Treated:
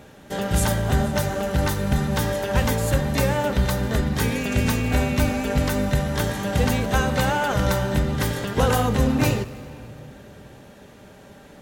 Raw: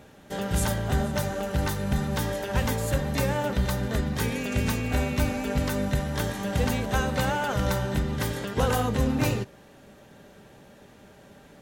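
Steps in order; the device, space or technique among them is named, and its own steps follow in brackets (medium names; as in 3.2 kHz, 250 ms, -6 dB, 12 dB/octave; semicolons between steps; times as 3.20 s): saturated reverb return (on a send at -10.5 dB: reverberation RT60 2.5 s, pre-delay 18 ms + saturation -25.5 dBFS, distortion -11 dB); on the sum: trim +4.5 dB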